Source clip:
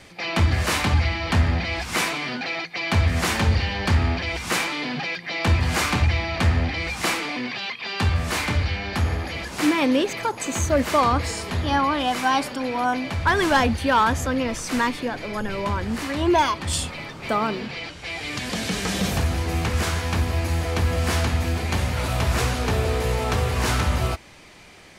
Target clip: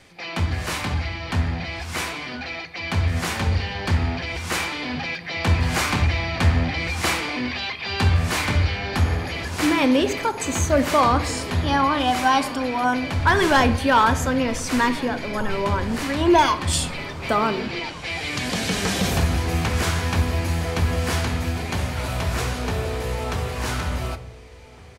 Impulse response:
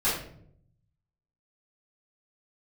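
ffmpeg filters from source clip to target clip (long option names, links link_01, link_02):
-filter_complex "[0:a]dynaudnorm=framelen=620:gausssize=17:maxgain=11.5dB,asplit=2[link_01][link_02];[link_02]adelay=1458,volume=-19dB,highshelf=frequency=4000:gain=-32.8[link_03];[link_01][link_03]amix=inputs=2:normalize=0,asplit=2[link_04][link_05];[1:a]atrim=start_sample=2205,asetrate=39249,aresample=44100[link_06];[link_05][link_06]afir=irnorm=-1:irlink=0,volume=-22dB[link_07];[link_04][link_07]amix=inputs=2:normalize=0,volume=-5dB"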